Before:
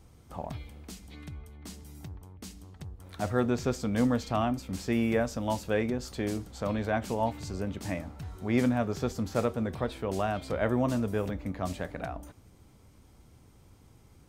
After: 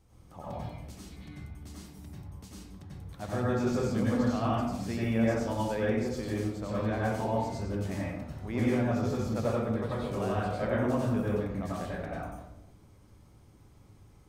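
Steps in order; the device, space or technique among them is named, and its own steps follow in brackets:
bathroom (convolution reverb RT60 0.85 s, pre-delay 86 ms, DRR −6.5 dB)
level −8.5 dB

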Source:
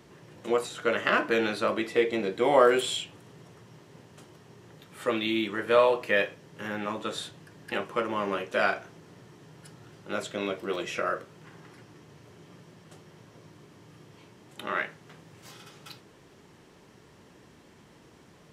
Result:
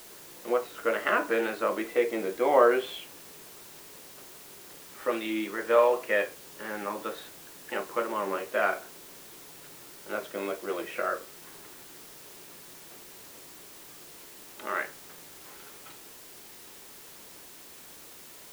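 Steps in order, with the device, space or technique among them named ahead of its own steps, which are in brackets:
wax cylinder (band-pass filter 300–2,100 Hz; tape wow and flutter; white noise bed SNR 17 dB)

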